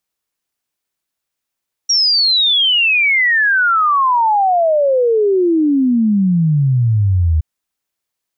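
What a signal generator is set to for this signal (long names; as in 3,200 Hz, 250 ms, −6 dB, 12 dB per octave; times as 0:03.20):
exponential sine sweep 5,700 Hz → 76 Hz 5.52 s −10 dBFS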